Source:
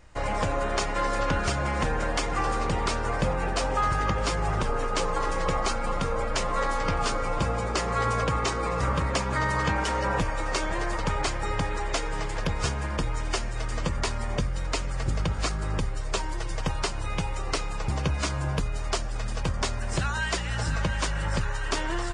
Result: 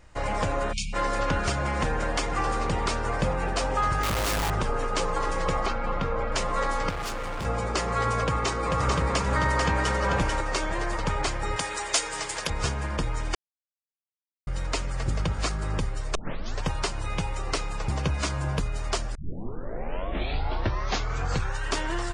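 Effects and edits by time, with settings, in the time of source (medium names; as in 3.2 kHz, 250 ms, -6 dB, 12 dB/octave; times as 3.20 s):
0.73–0.94 s: spectral selection erased 250–2200 Hz
4.03–4.50 s: one-bit comparator
5.66–6.32 s: low-pass 3.4 kHz
6.89–7.45 s: hard clipper -29.5 dBFS
8.24–10.41 s: delay 441 ms -3.5 dB
11.56–12.50 s: RIAA curve recording
13.35–14.47 s: mute
16.15 s: tape start 0.48 s
19.15 s: tape start 2.48 s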